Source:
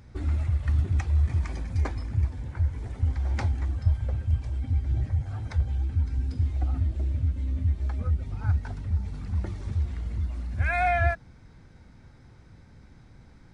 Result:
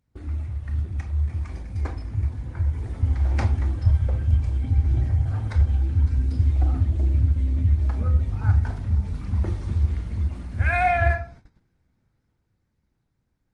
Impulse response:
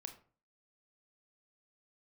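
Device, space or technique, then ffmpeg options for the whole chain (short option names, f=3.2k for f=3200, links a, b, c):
speakerphone in a meeting room: -filter_complex "[1:a]atrim=start_sample=2205[a];[0:a][a]afir=irnorm=-1:irlink=0,dynaudnorm=f=380:g=13:m=10.5dB,agate=range=-17dB:threshold=-44dB:ratio=16:detection=peak" -ar 48000 -c:a libopus -b:a 24k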